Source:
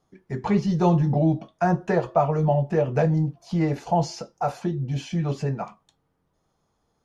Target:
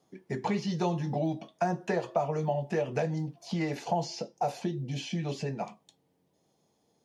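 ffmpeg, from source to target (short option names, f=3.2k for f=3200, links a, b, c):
-filter_complex "[0:a]asetnsamples=n=441:p=0,asendcmd='4.07 equalizer g -15',equalizer=f=1.3k:t=o:w=0.8:g=-8,acrossover=split=960|5400[a][b][c];[a]acompressor=threshold=-32dB:ratio=4[d];[b]acompressor=threshold=-40dB:ratio=4[e];[c]acompressor=threshold=-58dB:ratio=4[f];[d][e][f]amix=inputs=3:normalize=0,highpass=170,volume=3.5dB"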